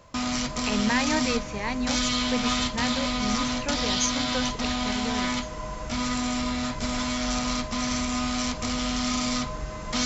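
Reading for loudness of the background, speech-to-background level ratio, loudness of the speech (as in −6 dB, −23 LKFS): −27.5 LKFS, −3.5 dB, −31.0 LKFS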